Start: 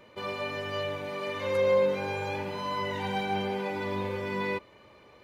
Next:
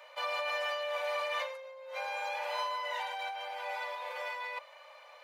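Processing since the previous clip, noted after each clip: compressor with a negative ratio -35 dBFS, ratio -1; steep high-pass 540 Hz 72 dB/octave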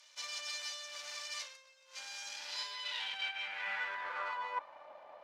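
half-wave rectifier; band-pass sweep 6 kHz -> 720 Hz, 2.30–4.92 s; trim +11 dB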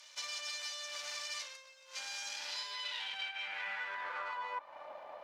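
compression 4:1, threshold -43 dBFS, peak gain reduction 9.5 dB; trim +5 dB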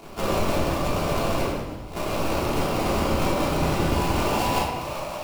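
sample-rate reducer 1.8 kHz, jitter 20%; simulated room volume 520 m³, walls mixed, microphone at 3.2 m; trim +8.5 dB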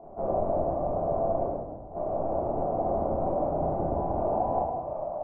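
four-pole ladder low-pass 760 Hz, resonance 70%; trim +2.5 dB

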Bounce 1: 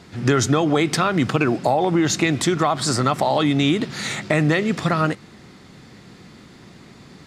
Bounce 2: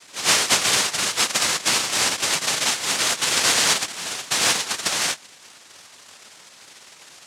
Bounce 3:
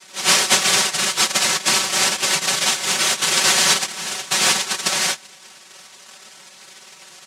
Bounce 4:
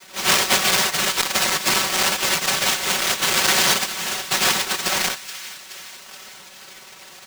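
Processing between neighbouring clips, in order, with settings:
comb filter that takes the minimum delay 7 ms; noise-vocoded speech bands 1; bass shelf 370 Hz -5 dB
comb 5.3 ms, depth 96%
square wave that keeps the level; feedback echo behind a high-pass 424 ms, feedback 59%, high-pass 1.6 kHz, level -16 dB; transformer saturation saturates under 1.4 kHz; trim -3.5 dB

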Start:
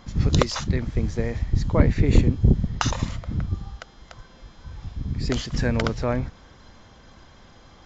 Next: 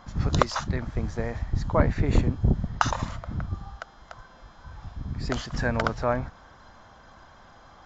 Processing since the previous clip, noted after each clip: high-order bell 1 kHz +8.5 dB; trim -5 dB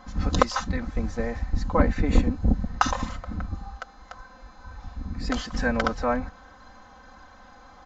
comb 3.9 ms, depth 87%; trim -1 dB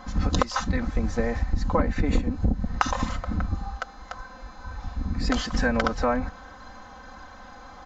compression 5:1, threshold -24 dBFS, peak gain reduction 12 dB; trim +5 dB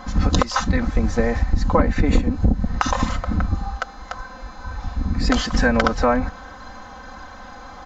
loudness maximiser +7 dB; trim -1 dB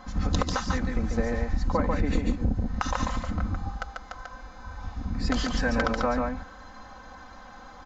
delay 142 ms -3.5 dB; trim -9 dB

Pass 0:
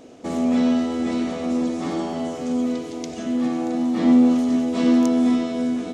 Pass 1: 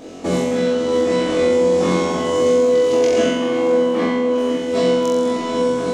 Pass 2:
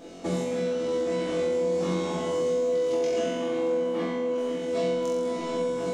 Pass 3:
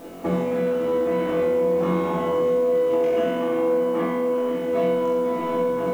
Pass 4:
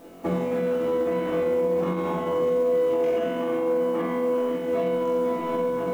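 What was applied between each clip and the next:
time-frequency box 2.93–4.58 s, 220–3300 Hz +6 dB; compression 6:1, threshold -23 dBFS, peak gain reduction 16.5 dB; flutter echo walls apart 3.8 m, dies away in 0.99 s; trim +6.5 dB
compression 2.5:1, threshold -18 dBFS, peak gain reduction 5 dB; feedback comb 170 Hz, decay 0.17 s, harmonics all, mix 80%
FFT filter 610 Hz 0 dB, 1.1 kHz +4 dB, 2.8 kHz -4 dB, 4.7 kHz -19 dB; word length cut 10-bit, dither triangular; trim +5 dB
peak limiter -16 dBFS, peak gain reduction 5.5 dB; upward expansion 1.5:1, over -34 dBFS

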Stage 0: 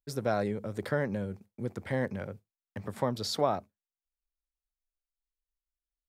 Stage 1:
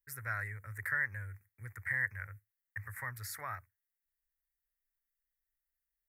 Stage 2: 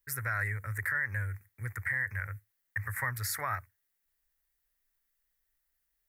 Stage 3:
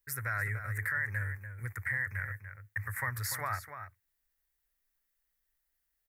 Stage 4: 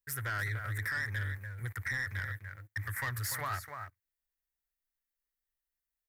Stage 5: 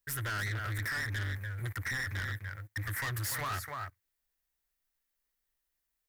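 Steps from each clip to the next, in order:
FFT filter 110 Hz 0 dB, 190 Hz -29 dB, 710 Hz -20 dB, 1.9 kHz +14 dB, 3.2 kHz -23 dB, 13 kHz +12 dB; trim -3 dB
peak limiter -31 dBFS, peak gain reduction 11 dB; trim +9 dB
echo from a far wall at 50 m, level -9 dB; trim -1.5 dB
waveshaping leveller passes 2; trim -6 dB
saturation -38.5 dBFS, distortion -11 dB; trim +6 dB

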